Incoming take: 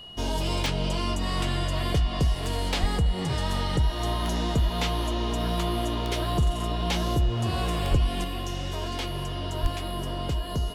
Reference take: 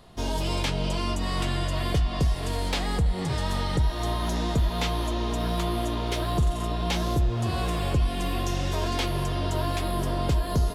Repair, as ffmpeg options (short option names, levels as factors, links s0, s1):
-filter_complex "[0:a]adeclick=t=4,bandreject=f=2900:w=30,asplit=3[s0][s1][s2];[s0]afade=t=out:st=2.8:d=0.02[s3];[s1]highpass=f=140:w=0.5412,highpass=f=140:w=1.3066,afade=t=in:st=2.8:d=0.02,afade=t=out:st=2.92:d=0.02[s4];[s2]afade=t=in:st=2.92:d=0.02[s5];[s3][s4][s5]amix=inputs=3:normalize=0,asplit=3[s6][s7][s8];[s6]afade=t=out:st=7.9:d=0.02[s9];[s7]highpass=f=140:w=0.5412,highpass=f=140:w=1.3066,afade=t=in:st=7.9:d=0.02,afade=t=out:st=8.02:d=0.02[s10];[s8]afade=t=in:st=8.02:d=0.02[s11];[s9][s10][s11]amix=inputs=3:normalize=0,asplit=3[s12][s13][s14];[s12]afade=t=out:st=9.62:d=0.02[s15];[s13]highpass=f=140:w=0.5412,highpass=f=140:w=1.3066,afade=t=in:st=9.62:d=0.02,afade=t=out:st=9.74:d=0.02[s16];[s14]afade=t=in:st=9.74:d=0.02[s17];[s15][s16][s17]amix=inputs=3:normalize=0,asetnsamples=n=441:p=0,asendcmd='8.24 volume volume 4.5dB',volume=1"